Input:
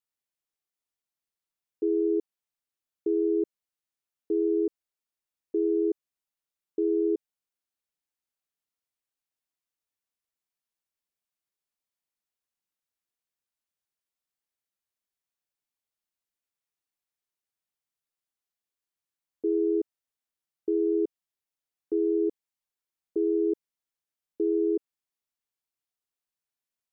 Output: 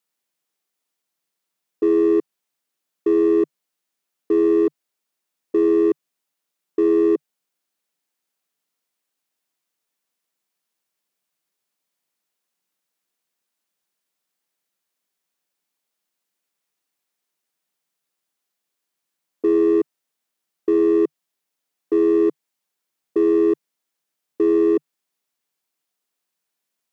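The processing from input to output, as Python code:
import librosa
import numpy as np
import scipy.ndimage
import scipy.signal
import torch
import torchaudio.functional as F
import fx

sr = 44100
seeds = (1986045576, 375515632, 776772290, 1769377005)

p1 = scipy.signal.sosfilt(scipy.signal.ellip(4, 1.0, 40, 150.0, 'highpass', fs=sr, output='sos'), x)
p2 = np.clip(p1, -10.0 ** (-31.0 / 20.0), 10.0 ** (-31.0 / 20.0))
p3 = p1 + F.gain(torch.from_numpy(p2), -4.0).numpy()
y = F.gain(torch.from_numpy(p3), 7.0).numpy()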